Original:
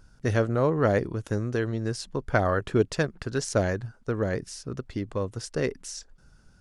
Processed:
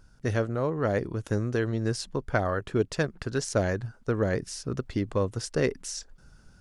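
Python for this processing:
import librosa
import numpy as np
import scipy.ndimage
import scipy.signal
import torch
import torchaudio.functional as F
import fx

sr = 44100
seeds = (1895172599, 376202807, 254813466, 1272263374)

y = fx.rider(x, sr, range_db=4, speed_s=0.5)
y = y * 10.0 ** (-1.0 / 20.0)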